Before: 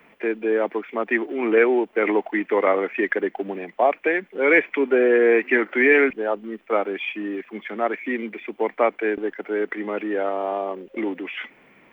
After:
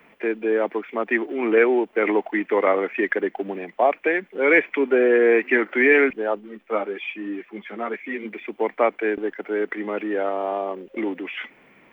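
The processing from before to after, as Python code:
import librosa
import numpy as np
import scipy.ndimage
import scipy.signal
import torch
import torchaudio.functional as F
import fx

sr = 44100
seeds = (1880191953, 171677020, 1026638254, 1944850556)

y = fx.ensemble(x, sr, at=(6.39, 8.24), fade=0.02)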